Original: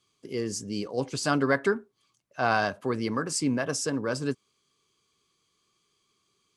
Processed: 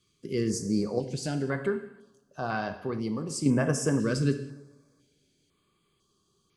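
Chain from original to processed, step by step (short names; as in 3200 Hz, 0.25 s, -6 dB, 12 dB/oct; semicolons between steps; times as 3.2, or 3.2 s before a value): low shelf 250 Hz +10 dB; 0.98–3.46 compressor 1.5:1, threshold -42 dBFS, peak gain reduction 9.5 dB; two-slope reverb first 0.86 s, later 2.7 s, from -26 dB, DRR 7 dB; stepped notch 2 Hz 830–7800 Hz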